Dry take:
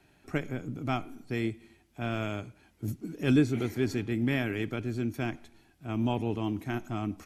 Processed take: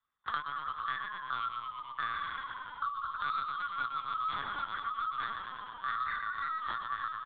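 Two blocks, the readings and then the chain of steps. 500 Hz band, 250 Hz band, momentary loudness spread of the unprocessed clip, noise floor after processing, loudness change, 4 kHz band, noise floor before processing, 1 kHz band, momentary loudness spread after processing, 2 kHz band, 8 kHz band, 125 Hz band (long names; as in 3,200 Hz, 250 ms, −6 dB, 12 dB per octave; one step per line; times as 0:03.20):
−24.0 dB, −31.5 dB, 11 LU, −48 dBFS, −4.0 dB, 0.0 dB, −65 dBFS, +8.0 dB, 5 LU, +1.5 dB, below −30 dB, −27.5 dB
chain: neighbouring bands swapped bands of 1,000 Hz
noise gate −52 dBFS, range −43 dB
high-pass filter 690 Hz 24 dB per octave
reverb reduction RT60 1.5 s
leveller curve on the samples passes 1
hard clipping −16.5 dBFS, distortion −31 dB
flanger 1.3 Hz, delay 8.5 ms, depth 5.3 ms, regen +9%
soft clipping −20 dBFS, distortion −19 dB
double-tracking delay 19 ms −12.5 dB
on a send: echo with shifted repeats 110 ms, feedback 55%, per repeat −44 Hz, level −5.5 dB
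on the sum: linear-prediction vocoder at 8 kHz pitch kept
multiband upward and downward compressor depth 100%
level −4.5 dB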